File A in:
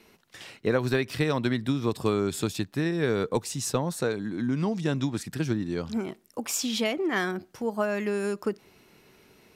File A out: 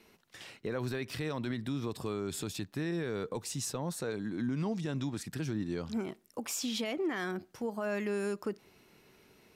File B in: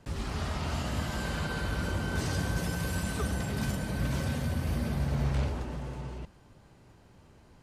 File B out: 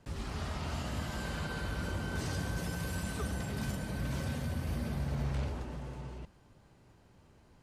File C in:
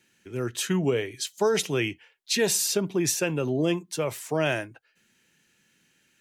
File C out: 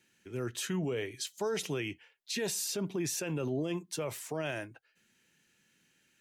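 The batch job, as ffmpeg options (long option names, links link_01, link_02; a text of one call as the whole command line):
ffmpeg -i in.wav -af "alimiter=limit=-21.5dB:level=0:latency=1:release=33,volume=-4.5dB" out.wav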